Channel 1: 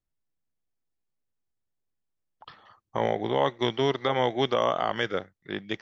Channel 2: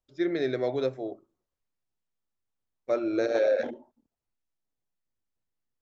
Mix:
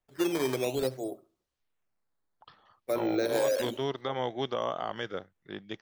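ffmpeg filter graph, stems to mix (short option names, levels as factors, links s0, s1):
-filter_complex "[0:a]equalizer=f=2100:w=2.6:g=-4.5,volume=0.447[s0];[1:a]equalizer=f=3900:t=o:w=1.9:g=5.5,acrossover=split=360|3000[s1][s2][s3];[s2]acompressor=threshold=0.0141:ratio=1.5[s4];[s1][s4][s3]amix=inputs=3:normalize=0,acrusher=samples=9:mix=1:aa=0.000001:lfo=1:lforange=14.4:lforate=0.56,volume=1,asplit=3[s5][s6][s7];[s6]volume=0.075[s8];[s7]apad=whole_len=256661[s9];[s0][s9]sidechaincompress=threshold=0.0355:ratio=8:attack=16:release=130[s10];[s8]aecho=0:1:70|140|210|280:1|0.26|0.0676|0.0176[s11];[s10][s5][s11]amix=inputs=3:normalize=0"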